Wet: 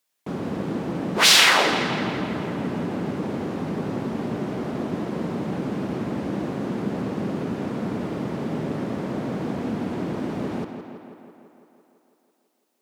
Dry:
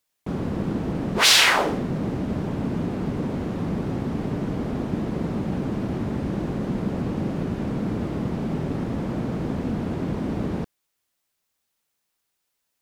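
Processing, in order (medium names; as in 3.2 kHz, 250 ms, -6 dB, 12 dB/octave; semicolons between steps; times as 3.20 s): high-pass 87 Hz; bass shelf 120 Hz -11.5 dB; tape echo 167 ms, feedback 73%, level -7.5 dB, low-pass 4.8 kHz; trim +1 dB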